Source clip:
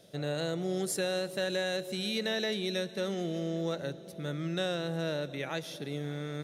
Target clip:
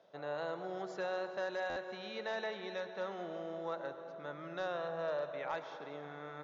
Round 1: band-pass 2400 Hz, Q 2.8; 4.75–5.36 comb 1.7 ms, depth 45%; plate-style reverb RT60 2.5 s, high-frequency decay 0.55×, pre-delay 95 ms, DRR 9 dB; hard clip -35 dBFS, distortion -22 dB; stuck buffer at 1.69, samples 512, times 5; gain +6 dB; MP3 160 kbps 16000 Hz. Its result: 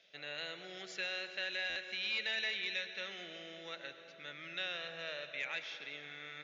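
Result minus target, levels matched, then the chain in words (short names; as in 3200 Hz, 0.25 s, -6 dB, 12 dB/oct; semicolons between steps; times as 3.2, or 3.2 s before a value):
1000 Hz band -11.5 dB
band-pass 980 Hz, Q 2.8; 4.75–5.36 comb 1.7 ms, depth 45%; plate-style reverb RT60 2.5 s, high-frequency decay 0.55×, pre-delay 95 ms, DRR 9 dB; hard clip -35 dBFS, distortion -27 dB; stuck buffer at 1.69, samples 512, times 5; gain +6 dB; MP3 160 kbps 16000 Hz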